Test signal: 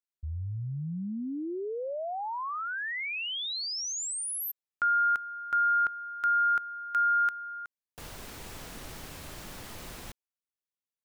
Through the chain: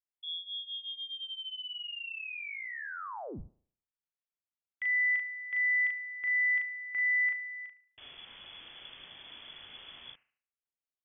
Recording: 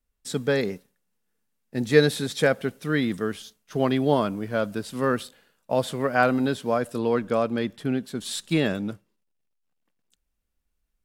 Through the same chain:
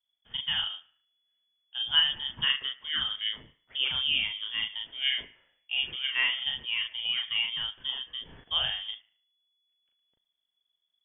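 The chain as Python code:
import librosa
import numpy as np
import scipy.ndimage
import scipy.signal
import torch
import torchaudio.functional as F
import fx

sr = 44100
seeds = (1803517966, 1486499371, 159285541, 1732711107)

y = fx.doubler(x, sr, ms=37.0, db=-2.5)
y = fx.echo_wet_bandpass(y, sr, ms=73, feedback_pct=38, hz=1100.0, wet_db=-14.0)
y = fx.freq_invert(y, sr, carrier_hz=3400)
y = y * librosa.db_to_amplitude(-8.5)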